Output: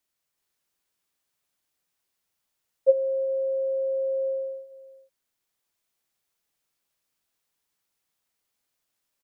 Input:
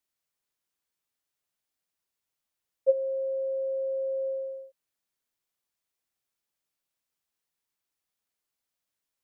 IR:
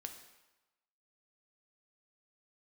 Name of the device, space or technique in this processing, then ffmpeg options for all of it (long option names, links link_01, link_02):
ducked delay: -filter_complex "[0:a]asplit=3[link_01][link_02][link_03];[link_02]adelay=375,volume=-2dB[link_04];[link_03]apad=whole_len=423749[link_05];[link_04][link_05]sidechaincompress=threshold=-52dB:ratio=8:attack=16:release=942[link_06];[link_01][link_06]amix=inputs=2:normalize=0,volume=4dB"